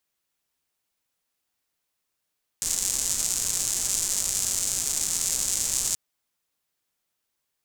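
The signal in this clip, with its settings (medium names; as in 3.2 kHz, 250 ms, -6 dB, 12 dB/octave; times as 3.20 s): rain from filtered ticks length 3.33 s, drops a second 280, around 7.2 kHz, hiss -15 dB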